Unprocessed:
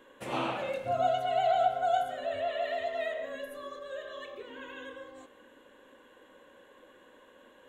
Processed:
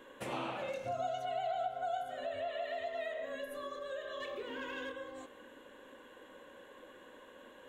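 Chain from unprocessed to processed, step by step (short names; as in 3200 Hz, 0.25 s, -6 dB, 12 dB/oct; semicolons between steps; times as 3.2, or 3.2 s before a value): 0.68–1.25 bell 6000 Hz +10.5 dB 0.53 oct; 4.2–4.92 sample leveller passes 1; compressor 2.5:1, threshold -42 dBFS, peak gain reduction 13.5 dB; gain +2 dB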